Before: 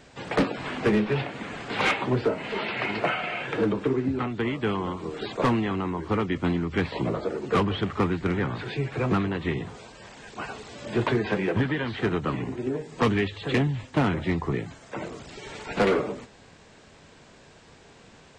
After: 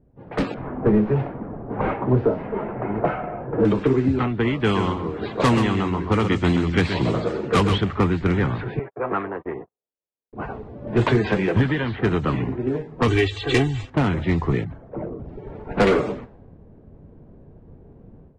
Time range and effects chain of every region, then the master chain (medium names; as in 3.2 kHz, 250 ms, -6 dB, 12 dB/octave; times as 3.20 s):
0.54–3.65 s: one-bit delta coder 32 kbps, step -32 dBFS + low-pass 1 kHz
4.60–7.78 s: high-pass 42 Hz + treble shelf 4.2 kHz +11.5 dB + delay 130 ms -7.5 dB
8.79–10.33 s: gate -33 dBFS, range -50 dB + three-band isolator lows -23 dB, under 380 Hz, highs -20 dB, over 2.2 kHz
13.08–13.90 s: treble shelf 4.3 kHz +10 dB + comb 2.6 ms, depth 99%
14.64–15.26 s: resonances exaggerated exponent 1.5 + hard clipper -30 dBFS
whole clip: level-controlled noise filter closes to 350 Hz, open at -20.5 dBFS; bass shelf 100 Hz +9.5 dB; level rider gain up to 12.5 dB; trim -6 dB